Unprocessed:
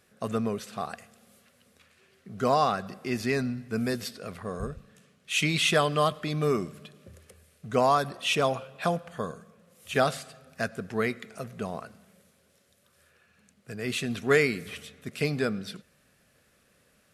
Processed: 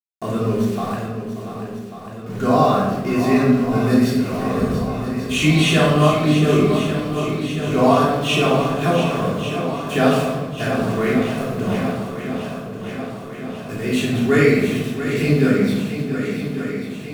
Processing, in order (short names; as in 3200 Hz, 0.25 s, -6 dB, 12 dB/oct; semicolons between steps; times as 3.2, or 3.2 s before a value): bell 210 Hz +7 dB 2.2 oct; notch 4900 Hz, Q 12; in parallel at -2 dB: compressor, threshold -30 dBFS, peak gain reduction 15.5 dB; on the sum: sample gate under -35.5 dBFS; on a send: swung echo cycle 1.142 s, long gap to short 1.5:1, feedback 62%, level -9.5 dB; on the sum: shoebox room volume 600 m³, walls mixed, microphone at 3.3 m; gain -4.5 dB